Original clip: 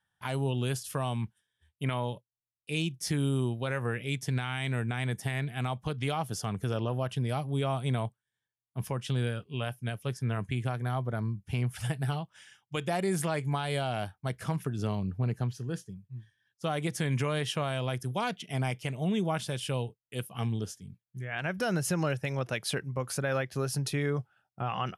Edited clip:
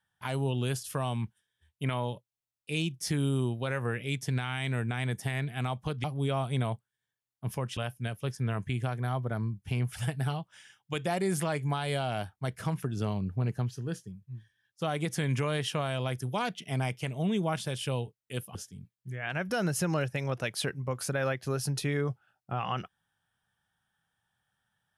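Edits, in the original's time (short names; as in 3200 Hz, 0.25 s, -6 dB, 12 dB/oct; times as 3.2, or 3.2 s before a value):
6.04–7.37 cut
9.1–9.59 cut
20.37–20.64 cut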